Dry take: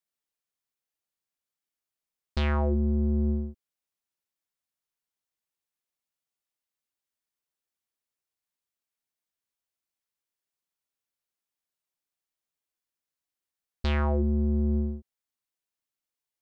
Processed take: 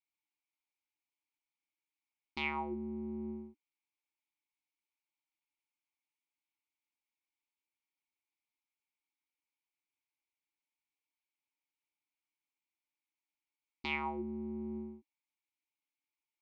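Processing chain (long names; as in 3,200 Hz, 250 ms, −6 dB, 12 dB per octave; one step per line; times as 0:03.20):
formant filter u
tilt shelving filter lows −9 dB
level +9.5 dB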